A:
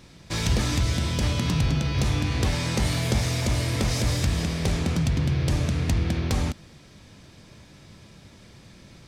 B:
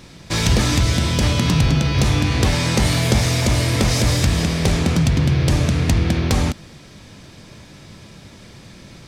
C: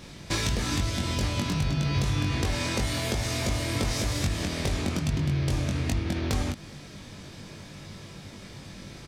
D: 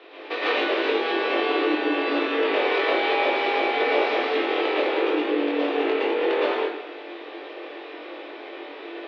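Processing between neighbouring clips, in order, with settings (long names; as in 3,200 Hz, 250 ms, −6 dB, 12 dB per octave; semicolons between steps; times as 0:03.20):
parametric band 61 Hz −2.5 dB 1.5 octaves; level +8 dB
downward compressor, threshold −22 dBFS, peak gain reduction 10.5 dB; double-tracking delay 21 ms −3.5 dB; level −3.5 dB
dense smooth reverb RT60 0.82 s, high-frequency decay 0.8×, pre-delay 100 ms, DRR −7.5 dB; single-sideband voice off tune +150 Hz 200–3,300 Hz; level +1.5 dB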